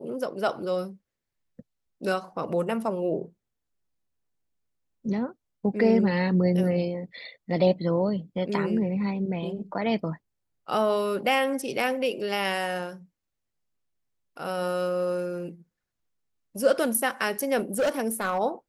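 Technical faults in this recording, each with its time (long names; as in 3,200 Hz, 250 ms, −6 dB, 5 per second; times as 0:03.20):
0:17.57–0:18.39: clipping −20.5 dBFS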